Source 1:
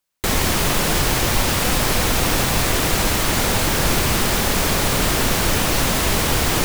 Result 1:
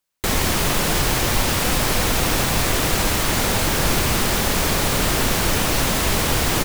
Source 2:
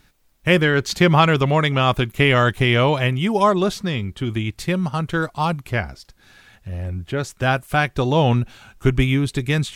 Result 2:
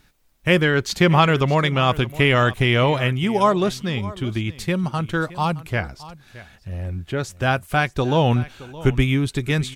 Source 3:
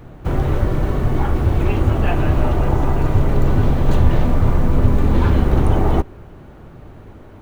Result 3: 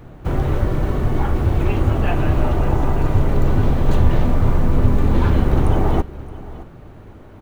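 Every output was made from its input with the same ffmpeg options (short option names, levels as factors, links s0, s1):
-af "aecho=1:1:619:0.126,volume=0.891"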